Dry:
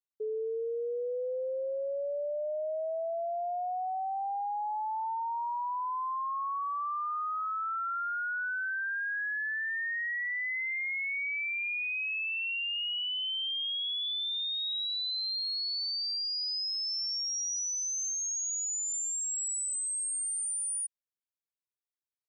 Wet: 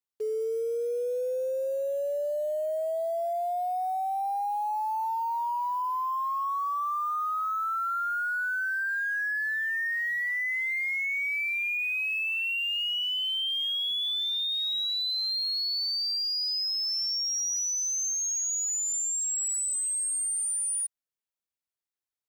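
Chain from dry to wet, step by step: 14.38–16.35 HPF 360 Hz 12 dB/oct; in parallel at -5 dB: requantised 8-bit, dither none

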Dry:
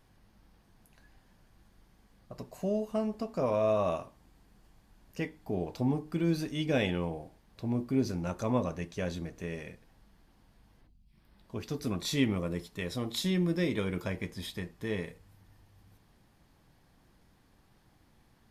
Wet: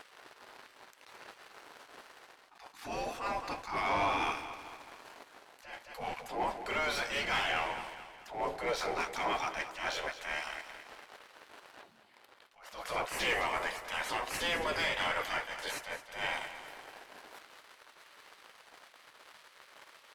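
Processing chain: spectral gate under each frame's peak -20 dB weak; in parallel at +0.5 dB: compressor, threshold -57 dBFS, peak gain reduction 21.5 dB; on the sum: sample leveller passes 3; reverse; upward compressor, threshold -44 dBFS; reverse; overdrive pedal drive 10 dB, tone 1800 Hz, clips at -23.5 dBFS; feedback echo 0.2 s, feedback 49%, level -12 dB; speed mistake 48 kHz file played as 44.1 kHz; attack slew limiter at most 120 dB/s; gain +2 dB

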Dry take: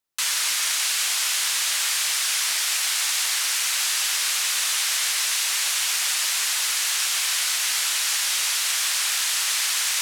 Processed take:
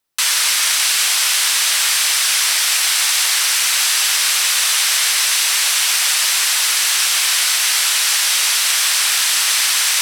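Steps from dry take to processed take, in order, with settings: notch 6800 Hz, Q 16; gain +8 dB

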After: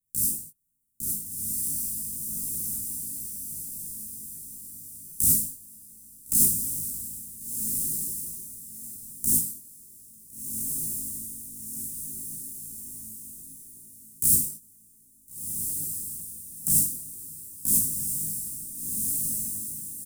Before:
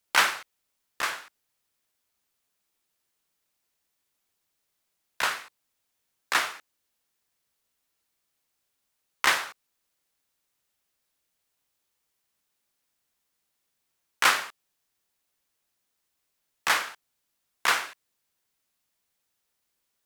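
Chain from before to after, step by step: switching dead time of 0.064 ms; in parallel at 0 dB: compressor, threshold -30 dBFS, peak gain reduction 13.5 dB; on the sum: doubler 19 ms -4.5 dB; on a send: diffused feedback echo 1.435 s, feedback 41%, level -4.5 dB; on the sum: non-linear reverb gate 90 ms rising, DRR -3 dB; vocal rider within 5 dB 2 s; elliptic band-stop 210–8800 Hz, stop band 60 dB; gain +6 dB

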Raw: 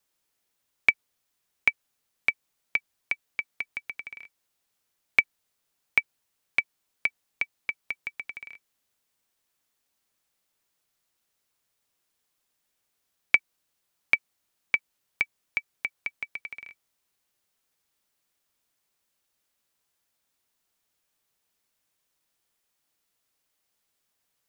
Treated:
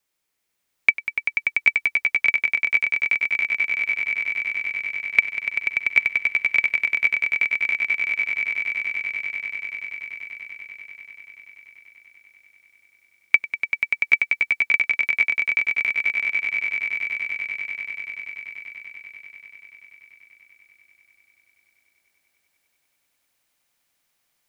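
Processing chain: bell 2200 Hz +5.5 dB 0.4 oct; on a send: swelling echo 97 ms, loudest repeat 8, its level -7 dB; on the sum: gain -1 dB

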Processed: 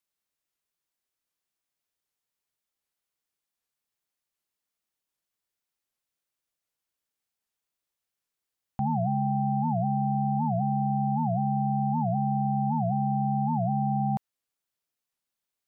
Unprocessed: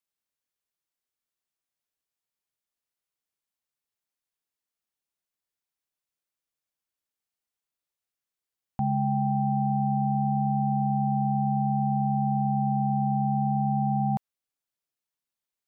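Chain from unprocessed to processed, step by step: in parallel at -1.5 dB: limiter -29 dBFS, peak gain reduction 11.5 dB; on the sum: record warp 78 rpm, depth 250 cents; gain -3 dB

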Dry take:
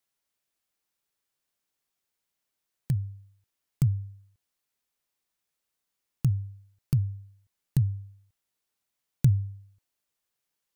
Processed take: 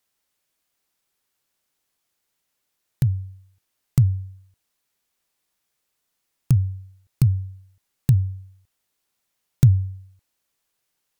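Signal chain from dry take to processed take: speed mistake 25 fps video run at 24 fps; gain +7 dB

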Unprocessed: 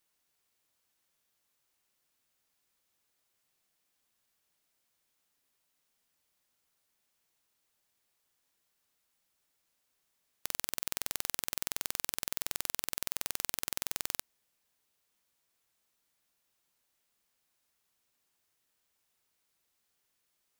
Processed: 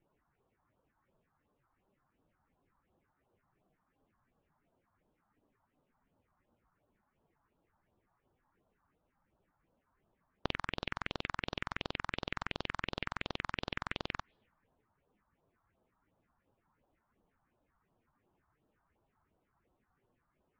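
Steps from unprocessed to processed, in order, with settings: spectral contrast raised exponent 1.6; low-pass opened by the level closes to 920 Hz, open at -49.5 dBFS; limiter -15.5 dBFS, peak gain reduction 6.5 dB; LPF 3000 Hz 24 dB/oct; phaser stages 4, 2.8 Hz, lowest notch 420–2200 Hz; gain +16 dB; MP3 40 kbps 48000 Hz

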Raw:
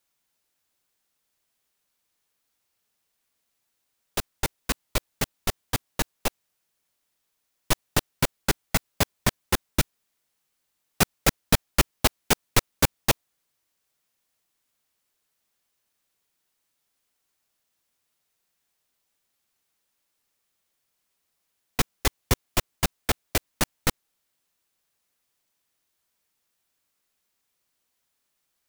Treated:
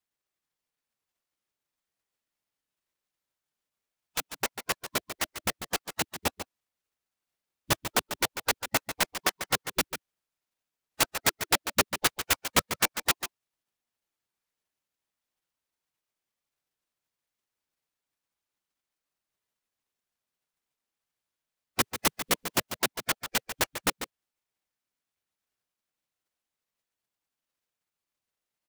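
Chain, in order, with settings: 21.8–22.58 high shelf 8700 Hz +5 dB; spectral gate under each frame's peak -10 dB weak; on a send: echo 0.144 s -10 dB; on the sum: noise-modulated delay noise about 2900 Hz, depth 0.041 ms

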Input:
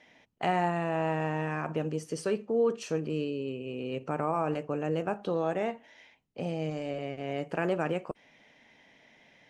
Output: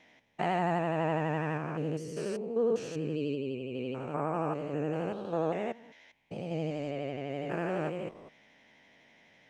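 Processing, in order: stepped spectrum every 0.2 s; vibrato 12 Hz 71 cents

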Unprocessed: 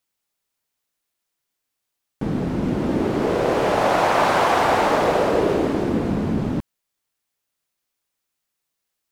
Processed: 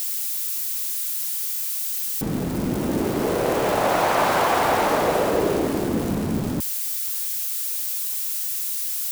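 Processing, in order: switching spikes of -21 dBFS; gain -2 dB

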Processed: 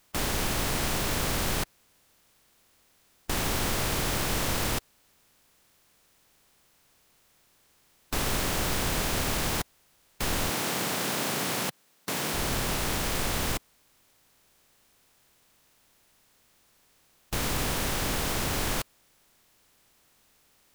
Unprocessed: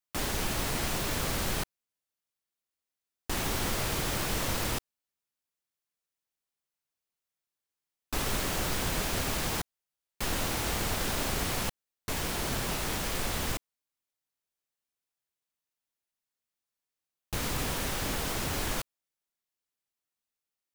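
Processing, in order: per-bin compression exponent 0.6; 10.5–12.34 HPF 140 Hz 24 dB/oct

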